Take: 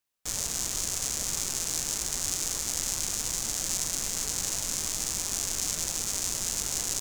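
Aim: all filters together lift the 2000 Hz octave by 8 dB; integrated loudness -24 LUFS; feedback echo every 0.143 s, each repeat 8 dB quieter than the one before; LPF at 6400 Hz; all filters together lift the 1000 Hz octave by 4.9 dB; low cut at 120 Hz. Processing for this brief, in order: HPF 120 Hz; LPF 6400 Hz; bell 1000 Hz +3.5 dB; bell 2000 Hz +9 dB; feedback echo 0.143 s, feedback 40%, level -8 dB; gain +6 dB

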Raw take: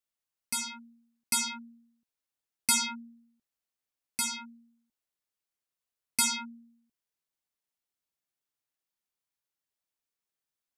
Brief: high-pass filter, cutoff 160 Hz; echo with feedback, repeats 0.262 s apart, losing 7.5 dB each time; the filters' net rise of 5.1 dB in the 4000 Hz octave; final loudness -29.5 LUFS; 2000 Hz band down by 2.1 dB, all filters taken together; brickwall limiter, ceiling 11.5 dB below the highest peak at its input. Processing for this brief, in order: HPF 160 Hz; bell 2000 Hz -5.5 dB; bell 4000 Hz +7.5 dB; limiter -23 dBFS; feedback echo 0.262 s, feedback 42%, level -7.5 dB; gain +4 dB

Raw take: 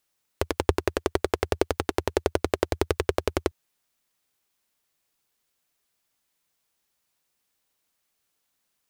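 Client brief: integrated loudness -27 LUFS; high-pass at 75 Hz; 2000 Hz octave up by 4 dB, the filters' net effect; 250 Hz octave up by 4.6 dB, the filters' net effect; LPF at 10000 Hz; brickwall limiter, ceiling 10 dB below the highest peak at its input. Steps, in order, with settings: HPF 75 Hz; LPF 10000 Hz; bell 250 Hz +7 dB; bell 2000 Hz +5 dB; gain +5.5 dB; limiter -5 dBFS

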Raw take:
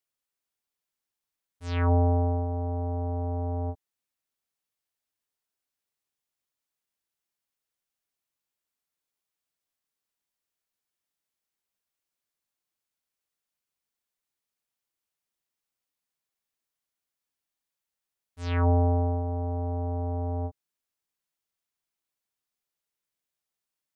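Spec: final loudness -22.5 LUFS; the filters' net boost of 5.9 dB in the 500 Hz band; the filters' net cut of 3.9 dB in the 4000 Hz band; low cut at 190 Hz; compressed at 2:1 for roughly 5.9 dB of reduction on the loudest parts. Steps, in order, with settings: HPF 190 Hz; bell 500 Hz +7.5 dB; bell 4000 Hz -5.5 dB; compressor 2:1, threshold -29 dBFS; gain +10.5 dB

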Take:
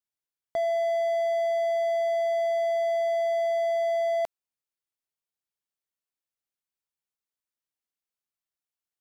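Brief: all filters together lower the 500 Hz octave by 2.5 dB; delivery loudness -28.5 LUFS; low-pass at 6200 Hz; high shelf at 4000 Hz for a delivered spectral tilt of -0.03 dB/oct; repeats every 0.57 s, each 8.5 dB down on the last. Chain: LPF 6200 Hz; bell 500 Hz -4.5 dB; high shelf 4000 Hz +6 dB; feedback echo 0.57 s, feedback 38%, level -8.5 dB; gain +2.5 dB

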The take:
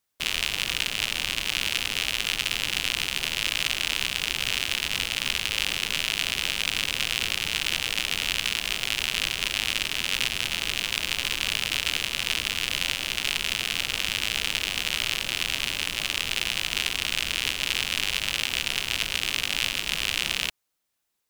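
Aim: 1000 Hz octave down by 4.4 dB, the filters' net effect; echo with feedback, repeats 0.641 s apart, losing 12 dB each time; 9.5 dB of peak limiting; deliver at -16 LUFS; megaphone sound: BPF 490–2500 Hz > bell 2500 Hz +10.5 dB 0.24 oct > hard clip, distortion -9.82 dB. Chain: bell 1000 Hz -5.5 dB; limiter -15 dBFS; BPF 490–2500 Hz; bell 2500 Hz +10.5 dB 0.24 oct; feedback echo 0.641 s, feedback 25%, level -12 dB; hard clip -27.5 dBFS; gain +18 dB

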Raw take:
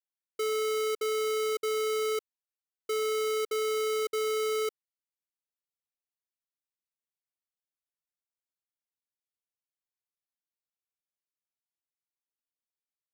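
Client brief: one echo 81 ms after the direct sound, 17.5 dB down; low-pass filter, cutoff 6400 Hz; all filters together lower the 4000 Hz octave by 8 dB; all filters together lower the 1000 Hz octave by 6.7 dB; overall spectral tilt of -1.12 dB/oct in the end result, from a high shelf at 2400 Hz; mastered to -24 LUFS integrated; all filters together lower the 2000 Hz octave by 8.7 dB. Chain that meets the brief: LPF 6400 Hz; bell 1000 Hz -5.5 dB; bell 2000 Hz -5.5 dB; high shelf 2400 Hz -3.5 dB; bell 4000 Hz -4.5 dB; echo 81 ms -17.5 dB; gain +8 dB

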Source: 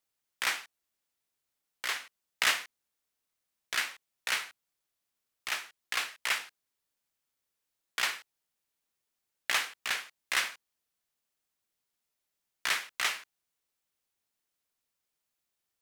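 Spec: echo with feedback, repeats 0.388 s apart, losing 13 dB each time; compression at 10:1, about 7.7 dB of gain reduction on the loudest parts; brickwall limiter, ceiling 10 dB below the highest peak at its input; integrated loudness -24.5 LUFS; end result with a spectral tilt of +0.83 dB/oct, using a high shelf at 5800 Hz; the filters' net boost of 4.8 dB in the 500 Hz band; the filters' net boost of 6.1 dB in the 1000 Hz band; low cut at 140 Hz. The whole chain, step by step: HPF 140 Hz; bell 500 Hz +3.5 dB; bell 1000 Hz +7 dB; high shelf 5800 Hz +3.5 dB; compressor 10:1, threshold -28 dBFS; limiter -21.5 dBFS; feedback echo 0.388 s, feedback 22%, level -13 dB; gain +14.5 dB

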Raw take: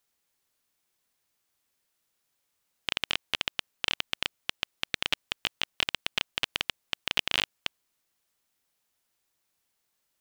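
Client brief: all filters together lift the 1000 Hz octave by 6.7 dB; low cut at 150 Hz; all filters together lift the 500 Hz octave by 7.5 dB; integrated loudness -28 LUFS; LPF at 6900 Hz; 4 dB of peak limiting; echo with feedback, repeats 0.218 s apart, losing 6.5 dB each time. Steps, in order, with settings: HPF 150 Hz; LPF 6900 Hz; bell 500 Hz +7.5 dB; bell 1000 Hz +6.5 dB; limiter -8.5 dBFS; feedback echo 0.218 s, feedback 47%, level -6.5 dB; gain +4 dB

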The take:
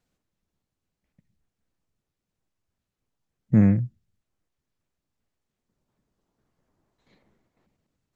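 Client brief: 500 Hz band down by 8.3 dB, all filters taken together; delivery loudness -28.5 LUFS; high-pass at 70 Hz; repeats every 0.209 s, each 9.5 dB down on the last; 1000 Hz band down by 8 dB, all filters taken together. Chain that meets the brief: HPF 70 Hz; bell 500 Hz -9 dB; bell 1000 Hz -7.5 dB; feedback echo 0.209 s, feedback 33%, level -9.5 dB; gain -5 dB

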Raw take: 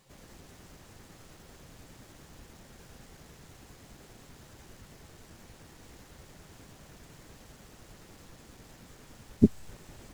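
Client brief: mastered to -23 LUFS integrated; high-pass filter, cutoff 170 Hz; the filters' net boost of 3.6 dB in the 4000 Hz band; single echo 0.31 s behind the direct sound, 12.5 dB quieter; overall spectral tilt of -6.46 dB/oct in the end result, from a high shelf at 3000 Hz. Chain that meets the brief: HPF 170 Hz; high shelf 3000 Hz -5 dB; bell 4000 Hz +8.5 dB; echo 0.31 s -12.5 dB; gain +7.5 dB

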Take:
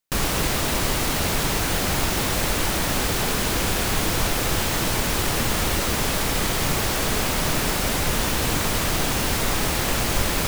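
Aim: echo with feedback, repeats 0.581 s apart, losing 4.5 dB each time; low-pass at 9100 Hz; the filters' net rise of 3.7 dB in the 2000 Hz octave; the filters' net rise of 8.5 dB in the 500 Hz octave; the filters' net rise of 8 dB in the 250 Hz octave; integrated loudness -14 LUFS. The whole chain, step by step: LPF 9100 Hz; bell 250 Hz +8 dB; bell 500 Hz +8 dB; bell 2000 Hz +4 dB; feedback echo 0.581 s, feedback 60%, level -4.5 dB; gain +3.5 dB

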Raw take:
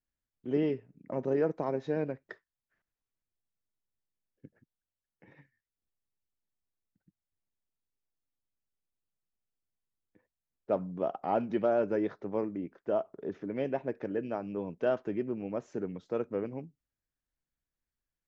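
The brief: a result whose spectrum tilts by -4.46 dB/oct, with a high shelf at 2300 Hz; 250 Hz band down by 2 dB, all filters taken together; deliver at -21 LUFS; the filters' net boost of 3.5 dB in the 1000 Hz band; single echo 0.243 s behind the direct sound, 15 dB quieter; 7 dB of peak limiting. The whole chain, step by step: bell 250 Hz -3 dB; bell 1000 Hz +6.5 dB; high shelf 2300 Hz -6 dB; limiter -21 dBFS; echo 0.243 s -15 dB; gain +13.5 dB

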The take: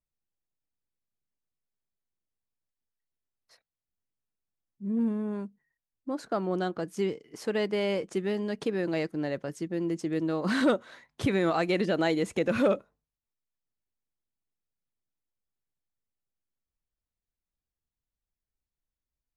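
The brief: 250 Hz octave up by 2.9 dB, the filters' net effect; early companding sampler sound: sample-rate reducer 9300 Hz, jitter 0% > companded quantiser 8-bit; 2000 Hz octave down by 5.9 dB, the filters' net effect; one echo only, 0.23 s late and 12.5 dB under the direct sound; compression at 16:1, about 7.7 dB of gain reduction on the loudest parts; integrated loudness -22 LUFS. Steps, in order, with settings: bell 250 Hz +4 dB; bell 2000 Hz -8 dB; compressor 16:1, threshold -25 dBFS; echo 0.23 s -12.5 dB; sample-rate reducer 9300 Hz, jitter 0%; companded quantiser 8-bit; gain +9.5 dB

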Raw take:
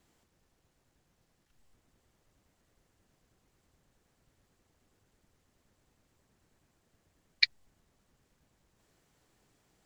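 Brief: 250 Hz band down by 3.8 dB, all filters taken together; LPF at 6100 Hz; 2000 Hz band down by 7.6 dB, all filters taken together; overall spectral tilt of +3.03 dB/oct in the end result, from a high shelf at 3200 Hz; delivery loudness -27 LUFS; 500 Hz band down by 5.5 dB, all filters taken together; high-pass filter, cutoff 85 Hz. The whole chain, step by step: HPF 85 Hz; LPF 6100 Hz; bell 250 Hz -3.5 dB; bell 500 Hz -5.5 dB; bell 2000 Hz -5.5 dB; high shelf 3200 Hz -8 dB; gain +9.5 dB

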